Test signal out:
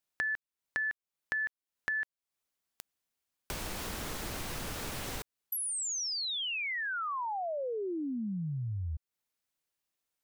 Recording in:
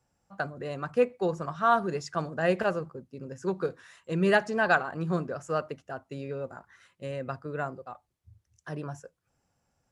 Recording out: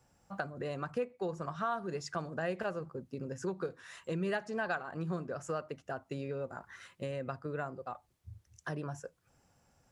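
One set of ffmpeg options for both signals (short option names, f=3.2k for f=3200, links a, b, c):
-af "acompressor=threshold=-44dB:ratio=3,volume=6dB"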